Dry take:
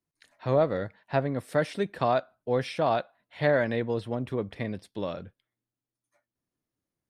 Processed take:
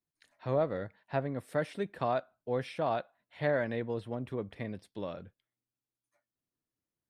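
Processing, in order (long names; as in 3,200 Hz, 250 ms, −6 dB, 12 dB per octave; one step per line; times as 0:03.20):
dynamic equaliser 5,300 Hz, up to −5 dB, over −55 dBFS, Q 1.2
level −6 dB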